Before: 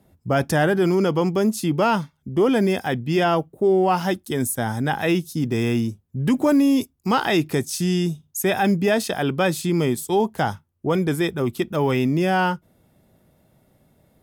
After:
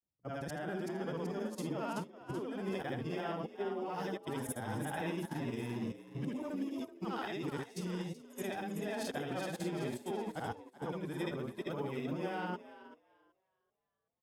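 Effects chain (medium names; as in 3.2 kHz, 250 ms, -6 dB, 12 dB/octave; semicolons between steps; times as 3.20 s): short-time spectra conjugated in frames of 167 ms; treble shelf 8.2 kHz -7.5 dB; level held to a coarse grid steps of 16 dB; frequency-shifting echo 380 ms, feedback 49%, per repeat +65 Hz, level -6.5 dB; upward expansion 2.5:1, over -48 dBFS; trim -4 dB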